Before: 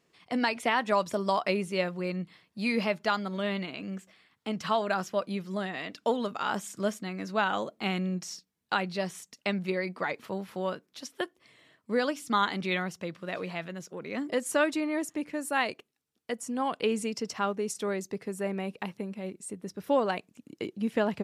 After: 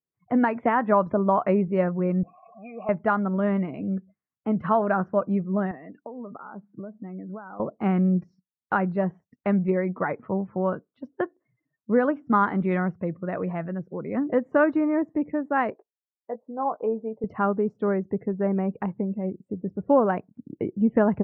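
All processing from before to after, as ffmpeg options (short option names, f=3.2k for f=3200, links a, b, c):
-filter_complex "[0:a]asettb=1/sr,asplit=3[a][b][c];[a]atrim=end=2.234[d];[b]atrim=start=2.23:end=2.89,asetpts=PTS-STARTPTS,afade=t=in:d=0.004:c=qsin,afade=t=out:st=0.656:d=0.004:c=qsin,aeval=exprs='val(0)+0.5*0.0237*sgn(val(0))':c=same,asplit=3[e][f][g];[e]bandpass=f=730:t=q:w=8,volume=0dB[h];[f]bandpass=f=1.09k:t=q:w=8,volume=-6dB[i];[g]bandpass=f=2.44k:t=q:w=8,volume=-9dB[j];[h][i][j]amix=inputs=3:normalize=0[k];[c]atrim=start=2.886[l];[d][k]acrossfade=d=0.004:c1=hsin:c2=qsin[m];[m][l]acrossfade=d=0.004:c1=qsin:c2=hsin,asettb=1/sr,asplit=3[n][o][p];[n]atrim=end=5.714[q];[o]atrim=start=5.71:end=7.6,asetpts=PTS-STARTPTS,afade=t=in:d=0.004:c=qsin,afade=t=out:st=1.886:d=0.004:c=qsin,acompressor=threshold=-40dB:ratio=16:attack=3.2:release=140:knee=1:detection=peak,highpass=150,lowpass=2.8k[r];[p]atrim=start=7.596[s];[q][r]acrossfade=d=0.004:c1=hsin:c2=qsin[t];[t][s]acrossfade=d=0.004:c1=qsin:c2=hsin,asettb=1/sr,asplit=3[u][v][w];[u]atrim=end=15.704[x];[v]atrim=start=15.7:end=17.24,asetpts=PTS-STARTPTS,afade=t=in:d=0.004:c=qsin,afade=t=out:st=1.536:d=0.004:c=qsin,bandpass=f=700:t=q:w=1.5,asplit=2[y][z];[z]adelay=18,volume=-9.5dB[aa];[y][aa]amix=inputs=2:normalize=0,atrim=end_sample=67914[ab];[w]atrim=start=17.236[ac];[x][ab]acrossfade=d=0.004:c1=hsin:c2=qsin[ad];[ad][ac]acrossfade=d=0.004:c1=qsin:c2=hsin,lowshelf=f=170:g=11,afftdn=nr=34:nf=-46,lowpass=f=1.6k:w=0.5412,lowpass=f=1.6k:w=1.3066,volume=5dB"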